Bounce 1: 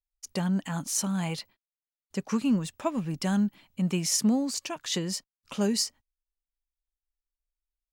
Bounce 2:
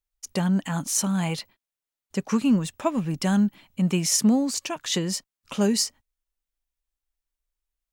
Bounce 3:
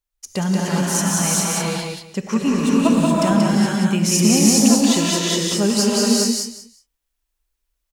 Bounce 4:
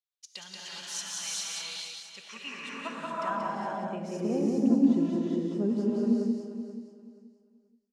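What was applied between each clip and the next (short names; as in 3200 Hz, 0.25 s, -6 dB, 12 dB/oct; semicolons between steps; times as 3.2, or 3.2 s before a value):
bell 4700 Hz -2.5 dB 0.31 oct; gain +4.5 dB
feedback echo 0.182 s, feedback 20%, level -3 dB; non-linear reverb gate 0.45 s rising, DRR -4 dB; gain +2 dB
feedback echo 0.48 s, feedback 24%, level -12 dB; band-pass sweep 3700 Hz -> 290 Hz, 2.13–4.85; gain -4 dB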